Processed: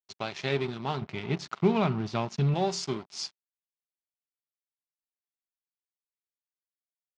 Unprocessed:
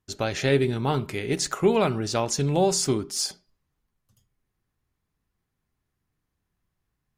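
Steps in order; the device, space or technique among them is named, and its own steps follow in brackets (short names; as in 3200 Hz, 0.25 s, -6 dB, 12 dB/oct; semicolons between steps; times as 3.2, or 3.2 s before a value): 1.01–2.54 tone controls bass +9 dB, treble -7 dB; blown loudspeaker (crossover distortion -34 dBFS; speaker cabinet 150–5600 Hz, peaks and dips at 290 Hz -9 dB, 500 Hz -10 dB, 1700 Hz -5 dB); gain -2 dB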